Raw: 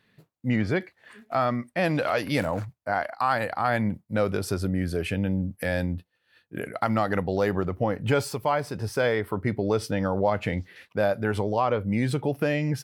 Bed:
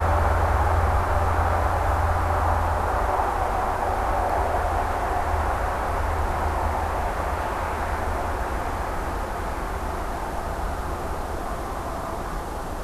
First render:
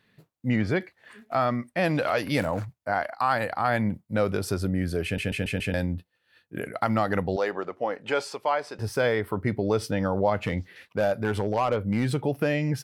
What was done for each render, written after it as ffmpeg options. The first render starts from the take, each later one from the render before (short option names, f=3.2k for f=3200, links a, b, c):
-filter_complex "[0:a]asettb=1/sr,asplit=3[a][b][c];[a]atrim=end=7.364[d];[b]atrim=start=7.36:end=8.79,asetpts=PTS-STARTPTS,afade=t=in:d=0.004:c=qsin,afade=t=out:st=1.426:d=0.004:c=qsin,highpass=430,lowpass=6.8k[e];[c]atrim=start=8.786[f];[d][e]acrossfade=d=0.004:c1=hsin:c2=qsin[g];[g][f]acrossfade=d=0.004:c1=qsin:c2=hsin,asettb=1/sr,asplit=3[h][i][j];[h]atrim=end=10.444[k];[i]atrim=start=10.44:end=12.16,asetpts=PTS-STARTPTS,afade=t=in:d=0.004:c=qsin,afade=t=out:st=1.716:d=0.004:c=qsin,asoftclip=type=hard:threshold=-17.5dB[l];[j]atrim=start=12.156[m];[k][l]acrossfade=d=0.004:c1=hsin:c2=qsin[n];[n][m]acrossfade=d=0.004:c1=qsin:c2=hsin,asplit=6[o][p][q][r][s][t];[o]atrim=end=5.182[u];[p]atrim=start=5.038:end=5.182[v];[q]atrim=start=5.038:end=5.182[w];[r]atrim=start=5.038:end=5.182[x];[s]atrim=start=5.038:end=5.182[y];[t]atrim=start=5.738[z];[u][v]acrossfade=d=0.004:c1=hsin:c2=hsin[aa];[aa][w]acrossfade=d=0.004:c1=hsin:c2=hsin[ab];[ab][x]acrossfade=d=0.004:c1=hsin:c2=hsin[ac];[ac][y]acrossfade=d=0.004:c1=hsin:c2=hsin[ad];[ad][z]acrossfade=d=0.004:c1=hsin:c2=hsin"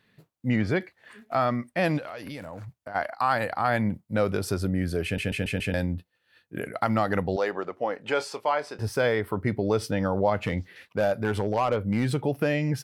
-filter_complex "[0:a]asplit=3[a][b][c];[a]afade=t=out:st=1.97:d=0.02[d];[b]acompressor=threshold=-34dB:ratio=8:attack=3.2:release=140:knee=1:detection=peak,afade=t=in:st=1.97:d=0.02,afade=t=out:st=2.94:d=0.02[e];[c]afade=t=in:st=2.94:d=0.02[f];[d][e][f]amix=inputs=3:normalize=0,asettb=1/sr,asplit=3[g][h][i];[g]atrim=end=8.164[j];[h]atrim=start=8.16:end=8.88,asetpts=PTS-STARTPTS,afade=t=in:d=0.004:c=qsin,afade=t=out:st=0.716:d=0.004:c=qsin,asplit=2[k][l];[l]adelay=27,volume=-13dB[m];[k][m]amix=inputs=2:normalize=0,atrim=end_sample=31752[n];[i]atrim=start=8.876[o];[j][n]acrossfade=d=0.004:c1=hsin:c2=qsin[p];[p][o]acrossfade=d=0.004:c1=qsin:c2=hsin"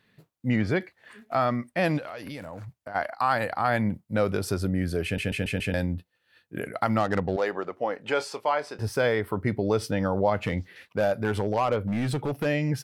-filter_complex "[0:a]asettb=1/sr,asplit=3[a][b][c];[a]atrim=end=7.004[d];[b]atrim=start=7:end=7.42,asetpts=PTS-STARTPTS,afade=t=in:d=0.004:c=qsin,afade=t=out:st=0.416:d=0.004:c=qsin,adynamicsmooth=sensitivity=4:basefreq=1.3k[e];[c]atrim=start=7.416[f];[d][e]acrossfade=d=0.004:c1=hsin:c2=qsin[g];[g][f]acrossfade=d=0.004:c1=qsin:c2=hsin,asettb=1/sr,asplit=3[h][i][j];[h]atrim=end=11.874[k];[i]atrim=start=11.87:end=12.46,asetpts=PTS-STARTPTS,afade=t=in:d=0.004:c=qsin,afade=t=out:st=0.586:d=0.004:c=qsin,volume=23dB,asoftclip=hard,volume=-23dB[l];[j]atrim=start=12.456[m];[k][l]acrossfade=d=0.004:c1=hsin:c2=qsin[n];[n][m]acrossfade=d=0.004:c1=qsin:c2=hsin"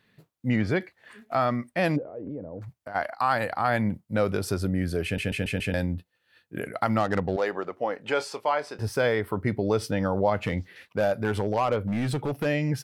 -filter_complex "[0:a]asplit=3[a][b][c];[a]afade=t=out:st=1.95:d=0.02[d];[b]lowpass=f=440:t=q:w=2.2,afade=t=in:st=1.95:d=0.02,afade=t=out:st=2.61:d=0.02[e];[c]afade=t=in:st=2.61:d=0.02[f];[d][e][f]amix=inputs=3:normalize=0"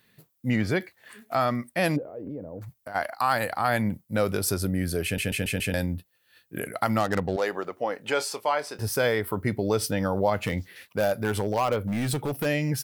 -af "aemphasis=mode=production:type=50fm"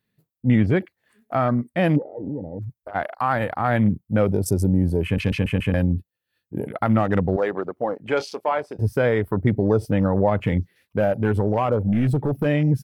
-af "afwtdn=0.0178,lowshelf=f=460:g=9.5"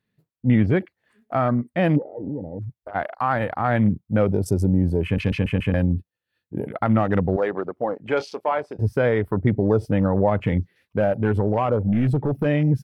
-af "lowpass=f=4k:p=1"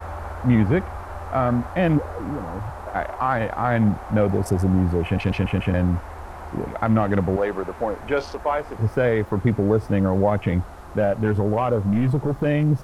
-filter_complex "[1:a]volume=-11.5dB[a];[0:a][a]amix=inputs=2:normalize=0"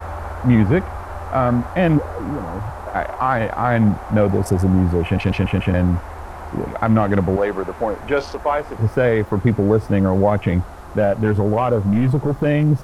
-af "volume=3.5dB"